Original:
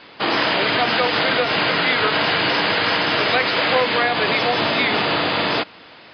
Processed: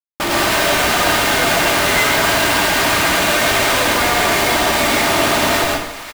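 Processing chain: notch 520 Hz, Q 12; comb 3.3 ms, depth 47%; Schmitt trigger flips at -27 dBFS; split-band echo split 850 Hz, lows 0.185 s, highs 0.541 s, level -15.5 dB; plate-style reverb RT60 0.63 s, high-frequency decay 0.9×, pre-delay 90 ms, DRR -1.5 dB

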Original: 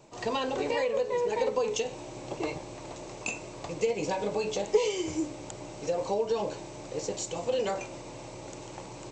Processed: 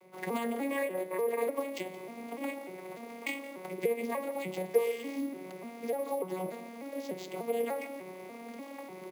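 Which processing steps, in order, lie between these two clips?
arpeggiated vocoder major triad, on F#3, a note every 0.296 s; on a send: echo 0.171 s -18.5 dB; on the sum: sample-and-hold 4×; HPF 150 Hz; bell 200 Hz -6.5 dB 0.26 oct; in parallel at +1 dB: compressor, threshold -37 dBFS, peak gain reduction 19 dB; on the sum: bell 2100 Hz +13 dB 0.42 oct; gain -5.5 dB

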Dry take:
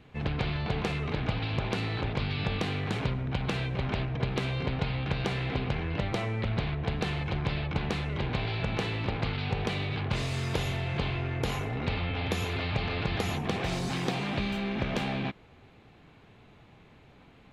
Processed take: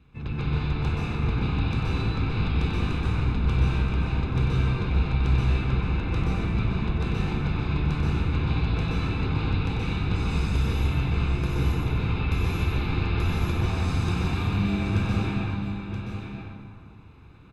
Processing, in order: octaver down 1 oct, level +2 dB; comb 0.8 ms, depth 56%; echo 0.976 s -8.5 dB; plate-style reverb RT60 2.1 s, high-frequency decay 0.5×, pre-delay 0.115 s, DRR -6.5 dB; gain -8 dB

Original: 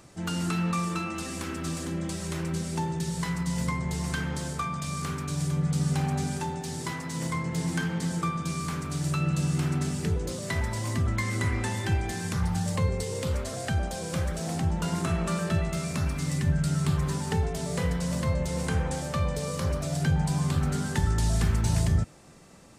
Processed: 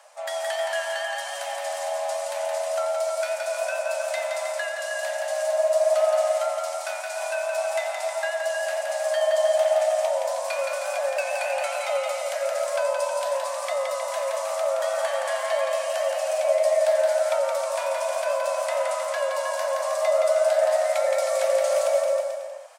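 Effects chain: vibrato 7 Hz 36 cents; bouncing-ball echo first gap 0.17 s, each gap 0.85×, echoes 5; frequency shift +480 Hz

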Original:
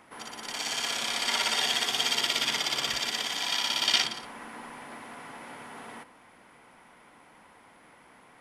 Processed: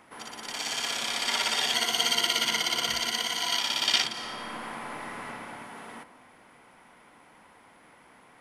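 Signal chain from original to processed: 1.74–3.59 ripple EQ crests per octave 1.9, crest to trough 11 dB; 4.11–5.26 reverb throw, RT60 2.6 s, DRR -4.5 dB

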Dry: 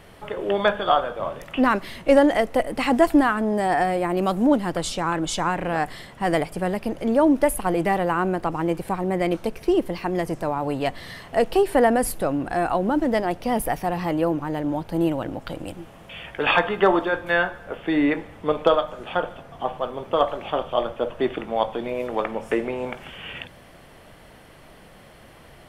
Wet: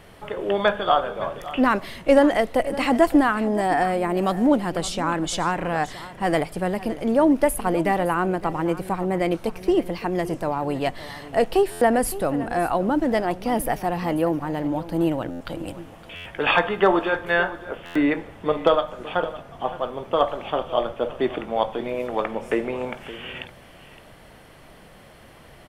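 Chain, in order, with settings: on a send: echo 0.564 s -16 dB; on the sum: stuck buffer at 11.71/15.3/16.15/17.85, samples 512, times 8

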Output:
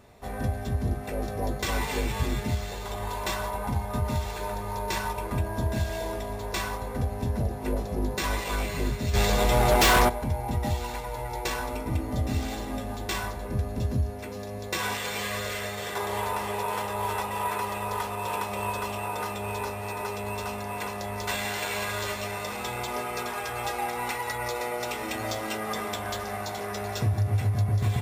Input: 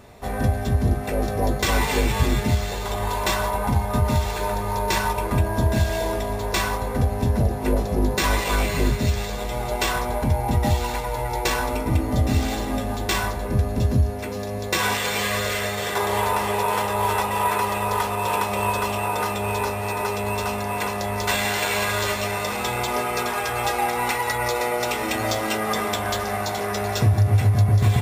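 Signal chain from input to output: 9.13–10.08 sine folder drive 9 dB -> 13 dB, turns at -7.5 dBFS; gain -7.5 dB

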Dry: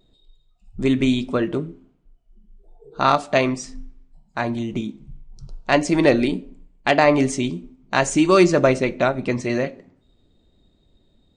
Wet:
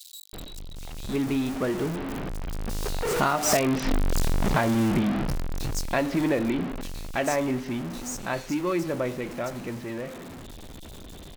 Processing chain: zero-crossing step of -19 dBFS; Doppler pass-by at 3.79, 14 m/s, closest 6.7 m; compressor 10:1, threshold -26 dBFS, peak gain reduction 11.5 dB; bands offset in time highs, lows 0.33 s, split 3800 Hz; gain +6 dB

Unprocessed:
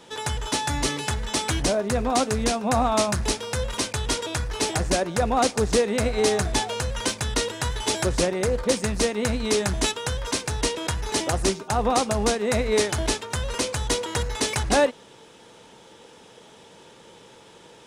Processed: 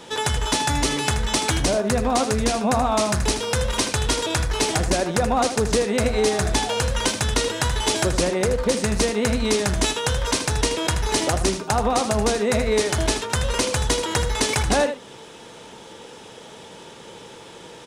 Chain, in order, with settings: compressor 3:1, threshold -26 dBFS, peak gain reduction 8 dB; on a send: echo 79 ms -9.5 dB; on the sum: gain +7 dB

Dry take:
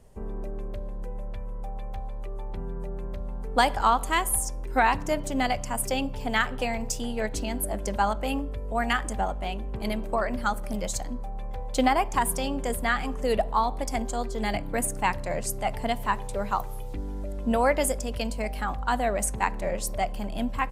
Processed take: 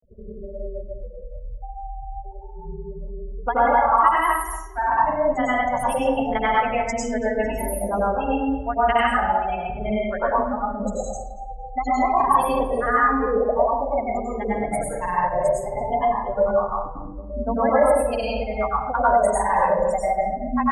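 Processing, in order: spectral gate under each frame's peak -15 dB strong; bell 980 Hz +13 dB 2.7 oct; compressor, threshold -14 dBFS, peak gain reduction 10 dB; grains 0.1 s, grains 20/s, pitch spread up and down by 0 st; darkening echo 0.229 s, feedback 20%, low-pass 2500 Hz, level -13 dB; plate-style reverb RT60 0.51 s, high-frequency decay 0.7×, pre-delay 85 ms, DRR -6 dB; gain -5.5 dB

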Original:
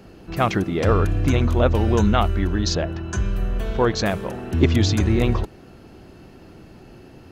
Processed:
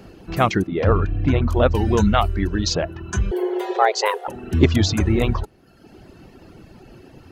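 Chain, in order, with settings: reverb removal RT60 0.98 s; 0.67–1.48 air absorption 250 m; 3.31–4.28 frequency shift +320 Hz; gain +2.5 dB

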